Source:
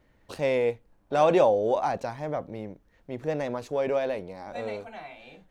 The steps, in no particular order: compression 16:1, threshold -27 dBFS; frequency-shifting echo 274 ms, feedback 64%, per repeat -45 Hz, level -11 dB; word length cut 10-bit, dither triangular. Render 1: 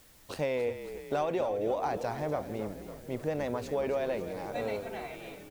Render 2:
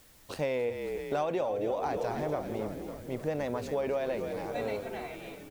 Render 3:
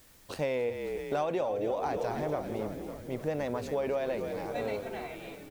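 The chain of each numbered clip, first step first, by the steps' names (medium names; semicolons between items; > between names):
word length cut > compression > frequency-shifting echo; word length cut > frequency-shifting echo > compression; frequency-shifting echo > word length cut > compression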